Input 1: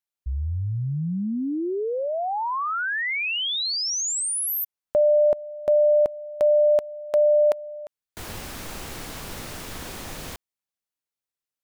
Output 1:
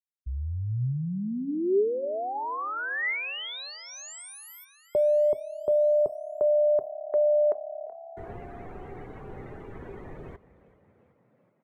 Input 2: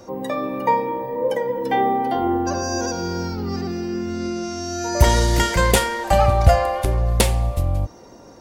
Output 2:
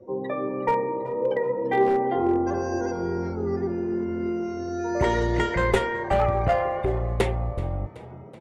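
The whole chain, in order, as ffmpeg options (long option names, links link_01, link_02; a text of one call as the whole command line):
ffmpeg -i in.wav -filter_complex "[0:a]aemphasis=mode=reproduction:type=75kf,bandreject=frequency=266:width_type=h:width=4,bandreject=frequency=532:width_type=h:width=4,bandreject=frequency=798:width_type=h:width=4,bandreject=frequency=1064:width_type=h:width=4,bandreject=frequency=1330:width_type=h:width=4,bandreject=frequency=1596:width_type=h:width=4,bandreject=frequency=1862:width_type=h:width=4,afftdn=noise_reduction=21:noise_floor=-40,equalizer=frequency=125:width_type=o:width=0.33:gain=5,equalizer=frequency=400:width_type=o:width=0.33:gain=11,equalizer=frequency=2000:width_type=o:width=0.33:gain=7,equalizer=frequency=5000:width_type=o:width=0.33:gain=-7,acrossover=split=170|5100[link_01][link_02][link_03];[link_01]acompressor=threshold=-18dB:ratio=10:attack=5.3:release=578:knee=2.83:detection=peak[link_04];[link_04][link_02][link_03]amix=inputs=3:normalize=0,aeval=exprs='clip(val(0),-1,0.282)':channel_layout=same,asplit=7[link_05][link_06][link_07][link_08][link_09][link_10][link_11];[link_06]adelay=378,afreqshift=35,volume=-19dB[link_12];[link_07]adelay=756,afreqshift=70,volume=-22.9dB[link_13];[link_08]adelay=1134,afreqshift=105,volume=-26.8dB[link_14];[link_09]adelay=1512,afreqshift=140,volume=-30.6dB[link_15];[link_10]adelay=1890,afreqshift=175,volume=-34.5dB[link_16];[link_11]adelay=2268,afreqshift=210,volume=-38.4dB[link_17];[link_05][link_12][link_13][link_14][link_15][link_16][link_17]amix=inputs=7:normalize=0,volume=-5dB" out.wav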